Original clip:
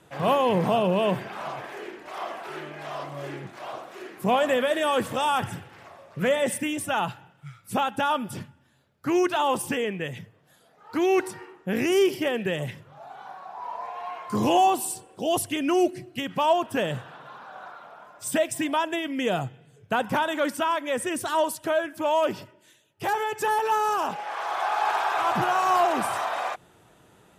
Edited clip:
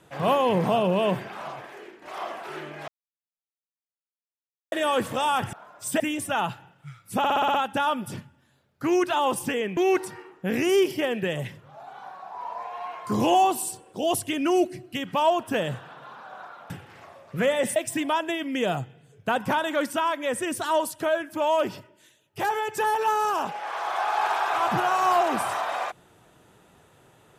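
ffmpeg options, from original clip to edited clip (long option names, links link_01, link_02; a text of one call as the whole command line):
ffmpeg -i in.wav -filter_complex "[0:a]asplit=15[link_01][link_02][link_03][link_04][link_05][link_06][link_07][link_08][link_09][link_10][link_11][link_12][link_13][link_14][link_15];[link_01]atrim=end=2.02,asetpts=PTS-STARTPTS,afade=type=out:start_time=1.13:duration=0.89:silence=0.375837[link_16];[link_02]atrim=start=2.02:end=2.88,asetpts=PTS-STARTPTS,afade=type=in:duration=0.004:curve=hsin:silence=0.375837,afade=type=out:start_time=0.856:duration=0.004:curve=hsin[link_17];[link_03]atrim=start=2.88:end=4.72,asetpts=PTS-STARTPTS,volume=0[link_18];[link_04]atrim=start=4.72:end=5.532,asetpts=PTS-STARTPTS,afade=type=in:duration=0.004:curve=hsin[link_19];[link_05]atrim=start=17.928:end=18.402[link_20];[link_06]atrim=start=6.588:end=7.832[link_21];[link_07]atrim=start=7.768:end=7.832[link_22];[link_08]atrim=start=7.768:end=7.832[link_23];[link_09]atrim=start=7.768:end=7.832[link_24];[link_10]atrim=start=7.768:end=7.832[link_25];[link_11]atrim=start=7.768:end=7.832[link_26];[link_12]atrim=start=7.768:end=10.002[link_27];[link_13]atrim=start=10.998:end=17.932[link_28];[link_14]atrim=start=5.528:end=6.592[link_29];[link_15]atrim=start=18.398[link_30];[link_16][link_17][link_18][link_19]concat=n=4:v=0:a=1[link_31];[link_31][link_20]acrossfade=duration=0.004:curve1=hsin:curve2=hsin[link_32];[link_32][link_21]acrossfade=duration=0.004:curve1=hsin:curve2=hsin[link_33];[link_33][link_22]acrossfade=duration=0.004:curve1=hsin:curve2=hsin[link_34];[link_34][link_23]acrossfade=duration=0.004:curve1=hsin:curve2=hsin[link_35];[link_35][link_24]acrossfade=duration=0.004:curve1=hsin:curve2=hsin[link_36];[link_36][link_25]acrossfade=duration=0.004:curve1=hsin:curve2=hsin[link_37];[link_37][link_26]acrossfade=duration=0.004:curve1=hsin:curve2=hsin[link_38];[link_38][link_27]acrossfade=duration=0.004:curve1=hsin:curve2=hsin[link_39];[link_39][link_28]acrossfade=duration=0.004:curve1=hsin:curve2=hsin[link_40];[link_40][link_29]acrossfade=duration=0.004:curve1=hsin:curve2=hsin[link_41];[link_41][link_30]acrossfade=duration=0.004:curve1=hsin:curve2=hsin" out.wav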